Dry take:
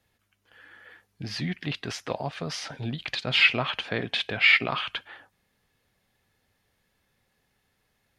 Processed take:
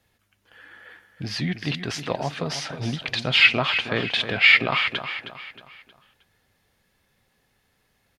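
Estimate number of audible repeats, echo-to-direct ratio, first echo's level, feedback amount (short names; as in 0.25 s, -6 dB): 4, -9.5 dB, -10.5 dB, 40%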